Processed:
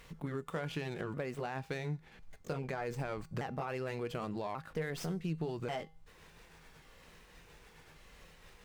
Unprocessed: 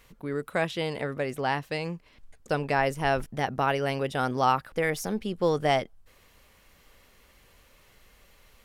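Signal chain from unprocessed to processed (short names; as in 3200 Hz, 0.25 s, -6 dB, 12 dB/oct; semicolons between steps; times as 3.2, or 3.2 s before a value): repeated pitch sweeps -4 st, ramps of 1.137 s; limiter -22.5 dBFS, peak gain reduction 10.5 dB; compressor 5:1, threshold -38 dBFS, peak gain reduction 10 dB; bell 160 Hz +6 dB 0.26 oct; resonator 160 Hz, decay 0.42 s, harmonics odd, mix 50%; running maximum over 3 samples; gain +7.5 dB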